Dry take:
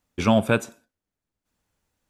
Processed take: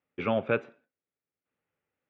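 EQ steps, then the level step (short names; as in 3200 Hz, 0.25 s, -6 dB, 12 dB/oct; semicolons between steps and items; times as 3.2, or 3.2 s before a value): speaker cabinet 200–2400 Hz, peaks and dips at 210 Hz -10 dB, 310 Hz -6 dB, 690 Hz -7 dB, 1000 Hz -8 dB, 1600 Hz -5 dB; notch 920 Hz, Q 26; -1.5 dB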